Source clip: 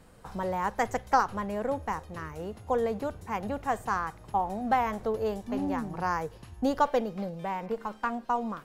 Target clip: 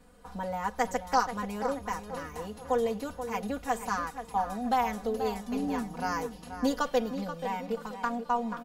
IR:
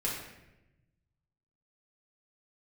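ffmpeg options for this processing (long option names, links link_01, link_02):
-filter_complex "[0:a]aecho=1:1:4.1:0.85,acrossover=split=2900[link_01][link_02];[link_02]dynaudnorm=framelen=360:gausssize=5:maxgain=9dB[link_03];[link_01][link_03]amix=inputs=2:normalize=0,asplit=2[link_04][link_05];[link_05]adelay=482,lowpass=frequency=2800:poles=1,volume=-9.5dB,asplit=2[link_06][link_07];[link_07]adelay=482,lowpass=frequency=2800:poles=1,volume=0.39,asplit=2[link_08][link_09];[link_09]adelay=482,lowpass=frequency=2800:poles=1,volume=0.39,asplit=2[link_10][link_11];[link_11]adelay=482,lowpass=frequency=2800:poles=1,volume=0.39[link_12];[link_04][link_06][link_08][link_10][link_12]amix=inputs=5:normalize=0,volume=-5dB"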